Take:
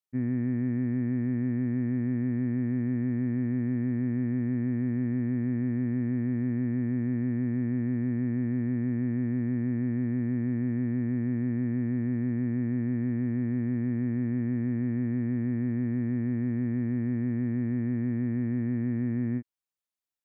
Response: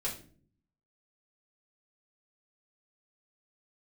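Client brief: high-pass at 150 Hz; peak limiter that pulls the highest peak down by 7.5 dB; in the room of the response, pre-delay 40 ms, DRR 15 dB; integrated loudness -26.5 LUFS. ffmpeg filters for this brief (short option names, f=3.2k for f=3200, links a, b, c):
-filter_complex "[0:a]highpass=150,alimiter=level_in=6.5dB:limit=-24dB:level=0:latency=1,volume=-6.5dB,asplit=2[a][b];[1:a]atrim=start_sample=2205,adelay=40[c];[b][c]afir=irnorm=-1:irlink=0,volume=-18dB[d];[a][d]amix=inputs=2:normalize=0,volume=10.5dB"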